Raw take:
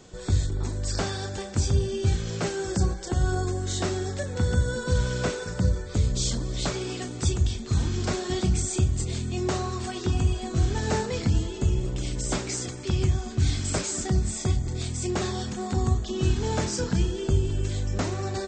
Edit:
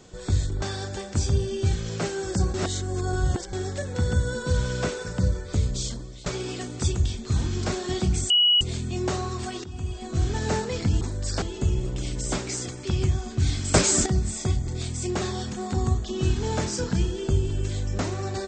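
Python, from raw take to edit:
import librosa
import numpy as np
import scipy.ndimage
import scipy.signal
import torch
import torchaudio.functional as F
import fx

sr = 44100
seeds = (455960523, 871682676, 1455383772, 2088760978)

y = fx.edit(x, sr, fx.move(start_s=0.62, length_s=0.41, to_s=11.42),
    fx.reverse_span(start_s=2.95, length_s=0.99),
    fx.fade_out_to(start_s=6.0, length_s=0.67, floor_db=-19.0),
    fx.bleep(start_s=8.71, length_s=0.31, hz=2920.0, db=-15.5),
    fx.fade_in_from(start_s=10.05, length_s=0.64, floor_db=-17.5),
    fx.clip_gain(start_s=13.74, length_s=0.32, db=9.0), tone=tone)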